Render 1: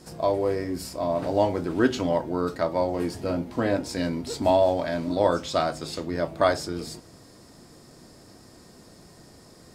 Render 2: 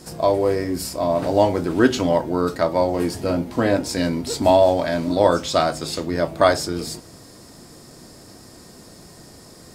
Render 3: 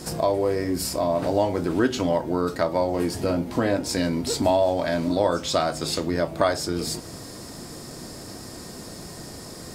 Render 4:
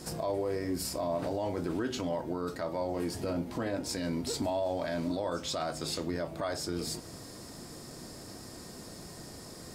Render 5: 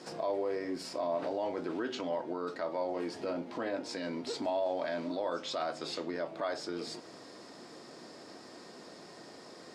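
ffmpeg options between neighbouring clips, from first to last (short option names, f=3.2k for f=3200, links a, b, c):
-af "highshelf=f=6.5k:g=5.5,volume=5.5dB"
-af "acompressor=threshold=-32dB:ratio=2,volume=5.5dB"
-af "alimiter=limit=-16dB:level=0:latency=1:release=20,volume=-7.5dB"
-af "highpass=310,lowpass=4.3k"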